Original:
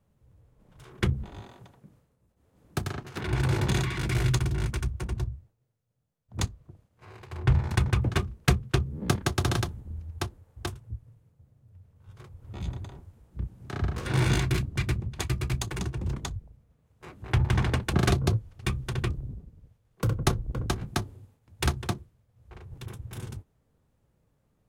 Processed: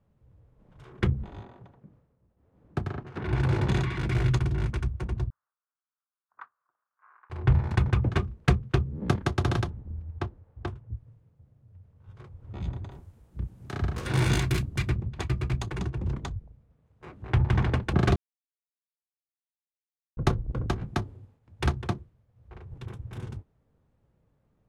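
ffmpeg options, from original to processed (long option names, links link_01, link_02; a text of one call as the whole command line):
ffmpeg -i in.wav -filter_complex "[0:a]asettb=1/sr,asplit=3[link_01][link_02][link_03];[link_01]atrim=end=1.434[link_04];[link_02]atrim=start=1.43:end=3.26,asetpts=PTS-STARTPTS,afade=type=in:duration=0.004:curve=qsin,afade=type=out:start_time=1.826:duration=0.004:curve=qsin,highshelf=frequency=3100:gain=-10[link_05];[link_03]atrim=start=3.256[link_06];[link_04][link_05]acrossfade=duration=0.004:curve1=hsin:curve2=qsin[link_07];[link_07][link_06]acrossfade=duration=0.004:curve1=qsin:curve2=hsin,asettb=1/sr,asplit=3[link_08][link_09][link_10];[link_08]atrim=end=5.304[link_11];[link_09]atrim=start=5.3:end=7.3,asetpts=PTS-STARTPTS,afade=type=in:duration=0.004:curve=qsin,afade=type=out:start_time=1.996:duration=0.004:curve=qsin,asuperpass=centerf=1300:order=4:qfactor=2.3[link_12];[link_10]atrim=start=7.296[link_13];[link_11][link_12]acrossfade=duration=0.004:curve1=hsin:curve2=qsin[link_14];[link_14][link_13]acrossfade=duration=0.004:curve1=qsin:curve2=hsin,asettb=1/sr,asplit=3[link_15][link_16][link_17];[link_15]atrim=end=9.704[link_18];[link_16]atrim=start=9.7:end=10.95,asetpts=PTS-STARTPTS,afade=type=in:duration=0.004:curve=qsin,afade=type=out:start_time=1.246:duration=0.004:curve=qsin,lowpass=frequency=2200:poles=1[link_19];[link_17]atrim=start=10.946[link_20];[link_18][link_19]acrossfade=duration=0.004:curve1=hsin:curve2=qsin[link_21];[link_21][link_20]acrossfade=duration=0.004:curve1=qsin:curve2=hsin,asettb=1/sr,asplit=3[link_22][link_23][link_24];[link_22]atrim=end=12.914[link_25];[link_23]atrim=start=12.91:end=14.89,asetpts=PTS-STARTPTS,afade=type=in:duration=0.004:curve=qsin,afade=type=out:start_time=1.976:duration=0.004:curve=qsin,aemphasis=mode=production:type=75fm[link_26];[link_24]atrim=start=14.886[link_27];[link_25][link_26]acrossfade=duration=0.004:curve1=hsin:curve2=qsin[link_28];[link_28][link_27]acrossfade=duration=0.004:curve1=qsin:curve2=hsin,asplit=3[link_29][link_30][link_31];[link_29]atrim=end=18.16,asetpts=PTS-STARTPTS,afade=type=out:start_time=18.156:duration=0.004:curve=hsin[link_32];[link_30]atrim=start=18.16:end=20.17,asetpts=PTS-STARTPTS,volume=0[link_33];[link_31]atrim=start=20.17,asetpts=PTS-STARTPTS,afade=type=in:duration=0.004:curve=hsin[link_34];[link_32][link_33][link_34]concat=n=3:v=0:a=1,aemphasis=mode=reproduction:type=75fm" out.wav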